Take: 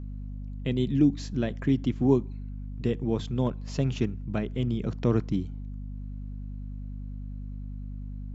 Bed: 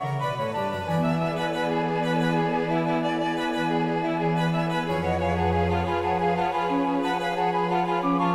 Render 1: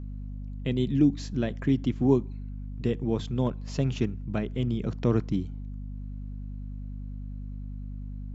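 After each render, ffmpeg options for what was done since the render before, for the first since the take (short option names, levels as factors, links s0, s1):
-af anull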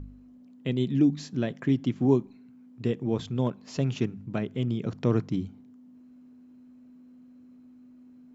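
-af "bandreject=f=50:t=h:w=4,bandreject=f=100:t=h:w=4,bandreject=f=150:t=h:w=4,bandreject=f=200:t=h:w=4"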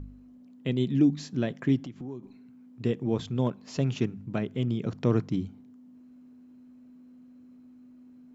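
-filter_complex "[0:a]asettb=1/sr,asplit=3[s0][s1][s2];[s0]atrim=end=1.824[s3];[s1]atrim=start=1.82:end=2.23,asetpts=PTS-STARTPTS,afade=t=in:d=0.004:c=qsin,afade=t=out:st=0.406:d=0.004:c=qsin,acompressor=threshold=0.0126:ratio=4:attack=3.2:release=140:knee=1:detection=peak[s4];[s2]atrim=start=2.226[s5];[s3][s4]acrossfade=d=0.004:c1=hsin:c2=qsin[s6];[s6][s5]acrossfade=d=0.004:c1=qsin:c2=hsin"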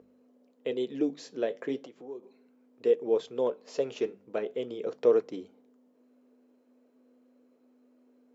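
-af "highpass=f=470:t=q:w=4.9,flanger=delay=2.8:depth=8:regen=-74:speed=0.37:shape=triangular"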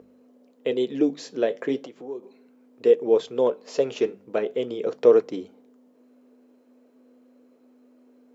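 -af "volume=2.24"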